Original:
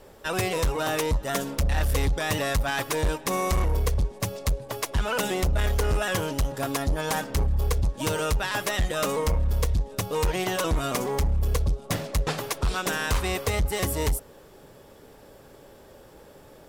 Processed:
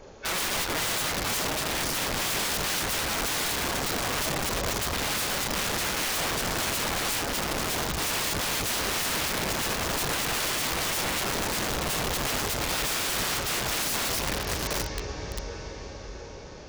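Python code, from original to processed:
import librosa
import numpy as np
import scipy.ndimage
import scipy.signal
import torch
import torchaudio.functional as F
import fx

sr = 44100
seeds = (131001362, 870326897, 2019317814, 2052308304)

y = fx.freq_compress(x, sr, knee_hz=1400.0, ratio=1.5)
y = fx.echo_diffused(y, sr, ms=696, feedback_pct=51, wet_db=-7.0)
y = (np.mod(10.0 ** (26.0 / 20.0) * y + 1.0, 2.0) - 1.0) / 10.0 ** (26.0 / 20.0)
y = F.gain(torch.from_numpy(y), 2.5).numpy()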